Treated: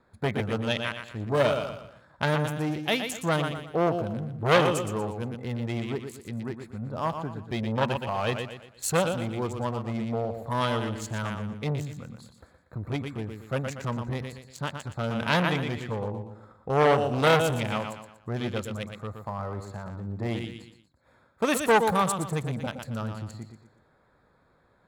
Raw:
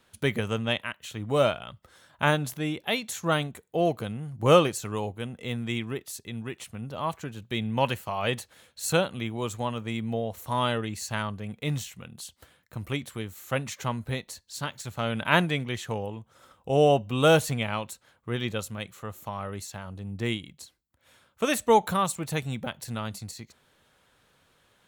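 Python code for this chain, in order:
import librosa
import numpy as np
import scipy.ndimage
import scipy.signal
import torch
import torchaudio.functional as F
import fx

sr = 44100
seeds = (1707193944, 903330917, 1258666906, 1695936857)

y = fx.wiener(x, sr, points=15)
y = fx.echo_feedback(y, sr, ms=119, feedback_pct=37, wet_db=-8.5)
y = fx.transformer_sat(y, sr, knee_hz=2100.0)
y = y * 10.0 ** (3.0 / 20.0)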